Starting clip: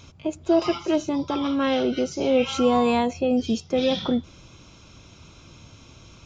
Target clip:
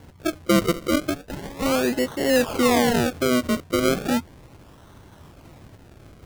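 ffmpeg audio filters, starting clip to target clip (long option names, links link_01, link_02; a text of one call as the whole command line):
ffmpeg -i in.wav -filter_complex "[0:a]asplit=3[link_01][link_02][link_03];[link_01]afade=type=out:start_time=1.13:duration=0.02[link_04];[link_02]highpass=920,afade=type=in:start_time=1.13:duration=0.02,afade=type=out:start_time=1.61:duration=0.02[link_05];[link_03]afade=type=in:start_time=1.61:duration=0.02[link_06];[link_04][link_05][link_06]amix=inputs=3:normalize=0,acrusher=samples=35:mix=1:aa=0.000001:lfo=1:lforange=35:lforate=0.35,volume=1dB" out.wav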